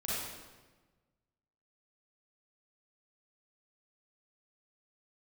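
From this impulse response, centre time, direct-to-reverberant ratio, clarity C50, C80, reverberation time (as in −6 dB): 107 ms, −9.0 dB, −5.0 dB, −0.5 dB, 1.3 s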